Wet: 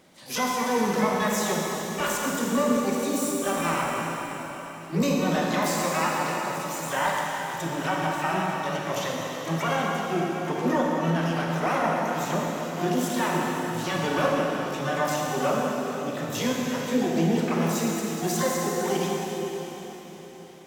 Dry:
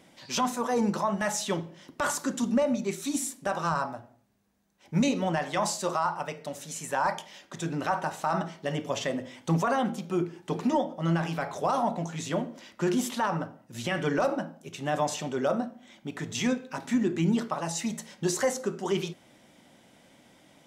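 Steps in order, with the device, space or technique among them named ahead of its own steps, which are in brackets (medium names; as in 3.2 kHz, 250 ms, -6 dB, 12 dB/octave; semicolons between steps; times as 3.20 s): 8.42–10.02 s: peaking EQ 240 Hz -6 dB 1.7 oct; shimmer-style reverb (harmony voices +12 st -6 dB; reverberation RT60 4.3 s, pre-delay 29 ms, DRR -2 dB); trim -1.5 dB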